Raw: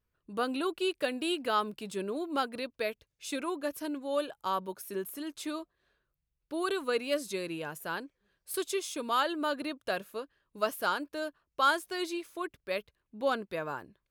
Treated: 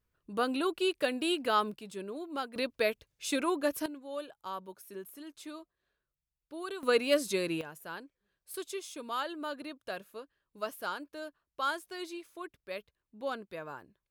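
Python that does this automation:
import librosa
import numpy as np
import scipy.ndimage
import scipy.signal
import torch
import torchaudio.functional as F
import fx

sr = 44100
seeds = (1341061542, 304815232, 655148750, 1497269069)

y = fx.gain(x, sr, db=fx.steps((0.0, 1.0), (1.76, -5.5), (2.56, 4.0), (3.86, -8.0), (6.83, 4.0), (7.61, -6.5)))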